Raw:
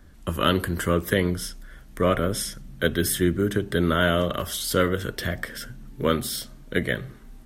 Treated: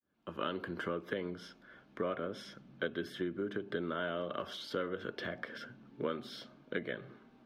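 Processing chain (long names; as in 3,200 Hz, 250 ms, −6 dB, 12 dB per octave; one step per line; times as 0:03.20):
fade in at the beginning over 0.73 s
downward compressor 6 to 1, threshold −27 dBFS, peak gain reduction 11.5 dB
high-pass filter 250 Hz 12 dB per octave
high-frequency loss of the air 270 metres
notch filter 1,900 Hz, Q 7.5
level −3 dB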